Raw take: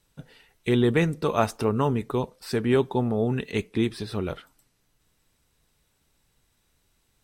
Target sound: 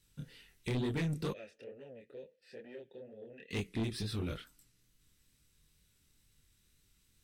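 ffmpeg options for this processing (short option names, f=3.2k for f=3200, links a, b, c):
-filter_complex "[0:a]equalizer=f=750:t=o:w=1.6:g=-15,acompressor=threshold=-25dB:ratio=6,flanger=delay=19.5:depth=7.6:speed=2.2,asoftclip=type=tanh:threshold=-32dB,asplit=3[a][b][c];[a]afade=t=out:st=1.32:d=0.02[d];[b]asplit=3[e][f][g];[e]bandpass=f=530:t=q:w=8,volume=0dB[h];[f]bandpass=f=1.84k:t=q:w=8,volume=-6dB[i];[g]bandpass=f=2.48k:t=q:w=8,volume=-9dB[j];[h][i][j]amix=inputs=3:normalize=0,afade=t=in:st=1.32:d=0.02,afade=t=out:st=3.5:d=0.02[k];[c]afade=t=in:st=3.5:d=0.02[l];[d][k][l]amix=inputs=3:normalize=0,volume=2.5dB"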